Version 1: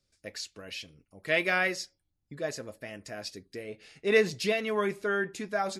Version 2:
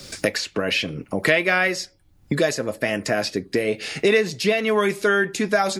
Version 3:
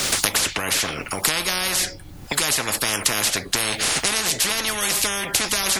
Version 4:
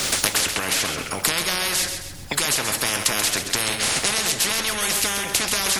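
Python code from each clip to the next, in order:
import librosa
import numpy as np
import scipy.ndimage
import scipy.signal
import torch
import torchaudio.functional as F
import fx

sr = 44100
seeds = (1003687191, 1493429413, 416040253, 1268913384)

y1 = fx.band_squash(x, sr, depth_pct=100)
y1 = y1 * 10.0 ** (9.0 / 20.0)
y2 = fx.spectral_comp(y1, sr, ratio=10.0)
y2 = y2 * 10.0 ** (2.0 / 20.0)
y3 = fx.echo_feedback(y2, sr, ms=133, feedback_pct=44, wet_db=-8)
y3 = y3 * 10.0 ** (-1.0 / 20.0)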